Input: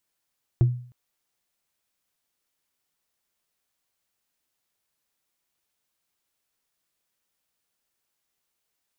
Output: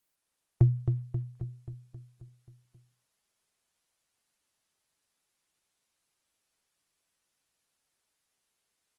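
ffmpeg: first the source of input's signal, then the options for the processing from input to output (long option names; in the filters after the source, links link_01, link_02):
-f lavfi -i "aevalsrc='0.251*pow(10,-3*t/0.48)*sin(2*PI*123*t)+0.0631*pow(10,-3*t/0.142)*sin(2*PI*339.1*t)+0.0158*pow(10,-3*t/0.063)*sin(2*PI*664.7*t)+0.00398*pow(10,-3*t/0.035)*sin(2*PI*1098.8*t)+0.001*pow(10,-3*t/0.021)*sin(2*PI*1640.8*t)':duration=0.31:sample_rate=44100"
-filter_complex "[0:a]asplit=2[link_01][link_02];[link_02]aecho=0:1:267|534|801|1068|1335|1602|1869|2136:0.447|0.264|0.155|0.0917|0.0541|0.0319|0.0188|0.0111[link_03];[link_01][link_03]amix=inputs=2:normalize=0" -ar 48000 -c:a libopus -b:a 24k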